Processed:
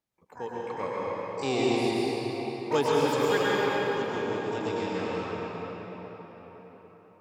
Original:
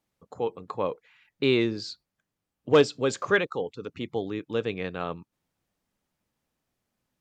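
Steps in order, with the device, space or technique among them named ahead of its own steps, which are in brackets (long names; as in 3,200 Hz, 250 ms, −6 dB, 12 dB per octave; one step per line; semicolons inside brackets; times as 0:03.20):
shimmer-style reverb (pitch-shifted copies added +12 semitones −7 dB; convolution reverb RT60 5.0 s, pre-delay 100 ms, DRR −6.5 dB)
level −8.5 dB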